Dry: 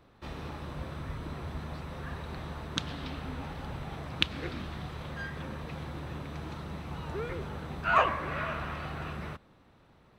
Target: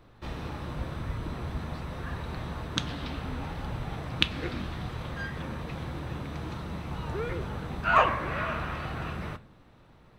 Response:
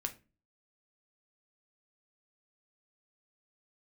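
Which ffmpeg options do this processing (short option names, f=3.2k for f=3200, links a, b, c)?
-filter_complex "[0:a]lowshelf=f=62:g=8.5,asplit=2[a][b];[1:a]atrim=start_sample=2205[c];[b][c]afir=irnorm=-1:irlink=0,volume=0dB[d];[a][d]amix=inputs=2:normalize=0,volume=-3dB"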